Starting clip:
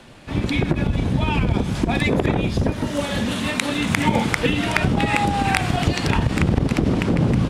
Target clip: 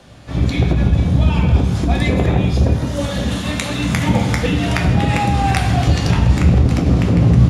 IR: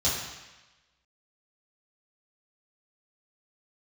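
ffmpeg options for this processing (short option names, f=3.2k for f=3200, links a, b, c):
-filter_complex "[0:a]asplit=2[a][b];[b]equalizer=f=11k:w=2.7:g=7.5[c];[1:a]atrim=start_sample=2205,lowshelf=f=110:g=6[d];[c][d]afir=irnorm=-1:irlink=0,volume=-11dB[e];[a][e]amix=inputs=2:normalize=0,volume=-3dB"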